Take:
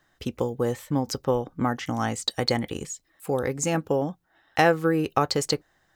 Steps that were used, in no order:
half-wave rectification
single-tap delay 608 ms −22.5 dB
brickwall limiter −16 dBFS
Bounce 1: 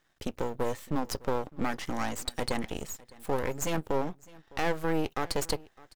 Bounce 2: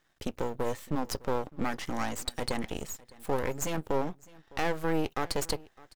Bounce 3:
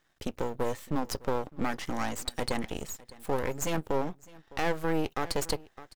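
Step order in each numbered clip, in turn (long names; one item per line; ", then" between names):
half-wave rectification, then brickwall limiter, then single-tap delay
brickwall limiter, then half-wave rectification, then single-tap delay
half-wave rectification, then single-tap delay, then brickwall limiter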